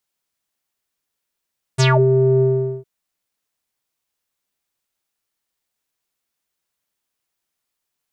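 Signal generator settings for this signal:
subtractive voice square C3 12 dB per octave, low-pass 440 Hz, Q 7, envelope 4.5 octaves, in 0.21 s, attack 22 ms, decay 0.26 s, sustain −5 dB, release 0.43 s, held 0.63 s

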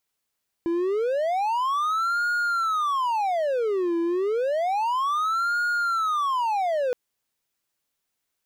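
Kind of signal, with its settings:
siren wail 336–1,430 Hz 0.3 per second triangle −19.5 dBFS 6.27 s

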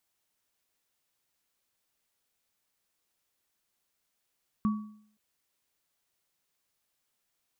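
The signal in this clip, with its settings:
inharmonic partials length 0.52 s, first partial 212 Hz, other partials 1,130 Hz, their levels −11 dB, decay 0.60 s, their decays 0.48 s, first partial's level −21.5 dB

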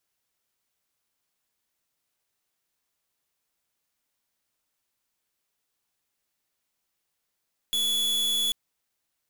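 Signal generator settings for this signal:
pulse wave 3,410 Hz, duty 44% −25.5 dBFS 0.79 s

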